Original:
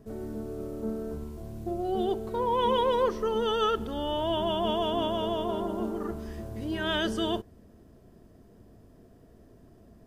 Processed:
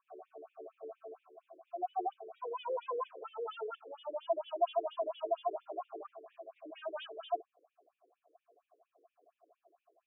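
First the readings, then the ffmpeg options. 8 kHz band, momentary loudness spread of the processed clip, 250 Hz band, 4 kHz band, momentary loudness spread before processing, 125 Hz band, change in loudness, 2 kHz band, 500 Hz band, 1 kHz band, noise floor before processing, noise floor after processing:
n/a, 17 LU, -23.5 dB, -19.0 dB, 12 LU, under -40 dB, -10.0 dB, -17.5 dB, -9.5 dB, -8.0 dB, -56 dBFS, under -85 dBFS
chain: -filter_complex "[0:a]asplit=3[a][b][c];[a]bandpass=f=730:t=q:w=8,volume=0dB[d];[b]bandpass=f=1.09k:t=q:w=8,volume=-6dB[e];[c]bandpass=f=2.44k:t=q:w=8,volume=-9dB[f];[d][e][f]amix=inputs=3:normalize=0,afftfilt=real='re*between(b*sr/1024,370*pow(2700/370,0.5+0.5*sin(2*PI*4.3*pts/sr))/1.41,370*pow(2700/370,0.5+0.5*sin(2*PI*4.3*pts/sr))*1.41)':imag='im*between(b*sr/1024,370*pow(2700/370,0.5+0.5*sin(2*PI*4.3*pts/sr))/1.41,370*pow(2700/370,0.5+0.5*sin(2*PI*4.3*pts/sr))*1.41)':win_size=1024:overlap=0.75,volume=6.5dB"

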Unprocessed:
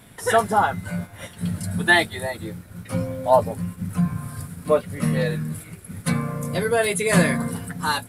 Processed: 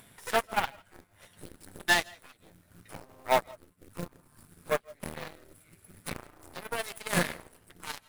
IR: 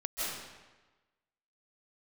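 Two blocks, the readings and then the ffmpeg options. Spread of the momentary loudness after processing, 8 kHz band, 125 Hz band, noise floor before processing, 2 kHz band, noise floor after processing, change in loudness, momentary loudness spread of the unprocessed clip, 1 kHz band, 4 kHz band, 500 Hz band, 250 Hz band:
23 LU, -9.0 dB, -19.0 dB, -45 dBFS, -9.0 dB, -65 dBFS, -8.5 dB, 14 LU, -10.0 dB, -6.0 dB, -12.5 dB, -17.0 dB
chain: -filter_complex "[0:a]aeval=exprs='0.668*(cos(1*acos(clip(val(0)/0.668,-1,1)))-cos(1*PI/2))+0.0422*(cos(3*acos(clip(val(0)/0.668,-1,1)))-cos(3*PI/2))+0.0596*(cos(6*acos(clip(val(0)/0.668,-1,1)))-cos(6*PI/2))+0.0841*(cos(7*acos(clip(val(0)/0.668,-1,1)))-cos(7*PI/2))+0.0133*(cos(8*acos(clip(val(0)/0.668,-1,1)))-cos(8*PI/2))':c=same,asplit=2[a][b];[b]equalizer=f=88:t=o:w=1:g=13.5[c];[1:a]atrim=start_sample=2205,afade=t=out:st=0.22:d=0.01,atrim=end_sample=10143[d];[c][d]afir=irnorm=-1:irlink=0,volume=-22.5dB[e];[a][e]amix=inputs=2:normalize=0,acrusher=bits=4:mode=log:mix=0:aa=0.000001,lowshelf=f=470:g=-6,acompressor=mode=upward:threshold=-32dB:ratio=2.5,volume=-6.5dB"

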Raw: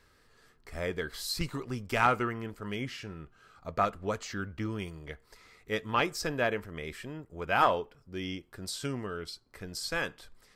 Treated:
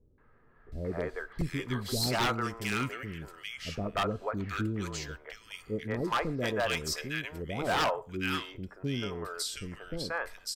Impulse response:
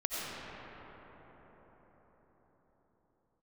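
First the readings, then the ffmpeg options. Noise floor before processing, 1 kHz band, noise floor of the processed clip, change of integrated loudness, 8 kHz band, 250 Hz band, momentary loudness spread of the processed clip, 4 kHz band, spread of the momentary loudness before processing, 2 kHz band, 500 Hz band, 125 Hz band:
-65 dBFS, -3.0 dB, -60 dBFS, -0.5 dB, +3.0 dB, +2.0 dB, 12 LU, +3.0 dB, 17 LU, 0.0 dB, -0.5 dB, +3.0 dB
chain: -filter_complex "[0:a]acrossover=split=480|1800[a][b][c];[b]adelay=180[d];[c]adelay=720[e];[a][d][e]amix=inputs=3:normalize=0,asplit=2[f][g];[1:a]atrim=start_sample=2205,atrim=end_sample=6174[h];[g][h]afir=irnorm=-1:irlink=0,volume=-23dB[i];[f][i]amix=inputs=2:normalize=0,aeval=exprs='0.0631*(abs(mod(val(0)/0.0631+3,4)-2)-1)':c=same,volume=2.5dB"

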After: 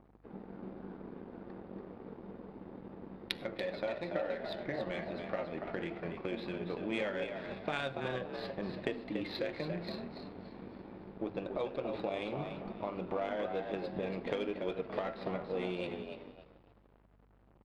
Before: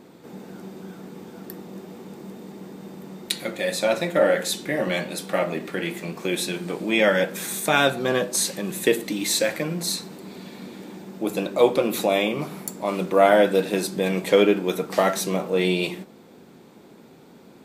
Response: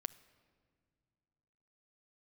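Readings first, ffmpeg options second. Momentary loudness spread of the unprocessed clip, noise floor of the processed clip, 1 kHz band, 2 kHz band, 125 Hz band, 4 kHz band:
21 LU, -64 dBFS, -15.5 dB, -16.5 dB, -12.5 dB, -17.5 dB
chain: -filter_complex "[0:a]asubboost=boost=9:cutoff=68,acrossover=split=3000[a][b];[a]acompressor=threshold=-29dB:ratio=6[c];[c][b]amix=inputs=2:normalize=0,asplit=6[d][e][f][g][h][i];[e]adelay=285,afreqshift=60,volume=-5.5dB[j];[f]adelay=570,afreqshift=120,volume=-13.9dB[k];[g]adelay=855,afreqshift=180,volume=-22.3dB[l];[h]adelay=1140,afreqshift=240,volume=-30.7dB[m];[i]adelay=1425,afreqshift=300,volume=-39.1dB[n];[d][j][k][l][m][n]amix=inputs=6:normalize=0,aresample=11025,aeval=exprs='sgn(val(0))*max(abs(val(0))-0.00501,0)':c=same,aresample=44100,adynamicsmooth=sensitivity=0.5:basefreq=1.5k[o];[1:a]atrim=start_sample=2205,afade=t=out:st=0.15:d=0.01,atrim=end_sample=7056,asetrate=33516,aresample=44100[p];[o][p]afir=irnorm=-1:irlink=0,aeval=exprs='val(0)+0.000708*(sin(2*PI*50*n/s)+sin(2*PI*2*50*n/s)/2+sin(2*PI*3*50*n/s)/3+sin(2*PI*4*50*n/s)/4+sin(2*PI*5*50*n/s)/5)':c=same,volume=-2.5dB"

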